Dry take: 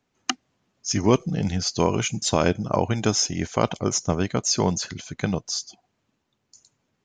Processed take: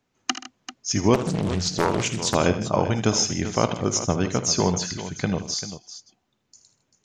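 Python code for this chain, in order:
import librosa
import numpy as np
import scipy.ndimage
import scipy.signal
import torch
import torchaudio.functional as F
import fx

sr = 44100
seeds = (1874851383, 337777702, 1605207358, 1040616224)

y = fx.echo_multitap(x, sr, ms=(54, 56, 78, 129, 157, 391), db=(-20.0, -17.5, -12.5, -19.5, -17.0, -12.5))
y = fx.doppler_dist(y, sr, depth_ms=0.86, at=(1.14, 2.35))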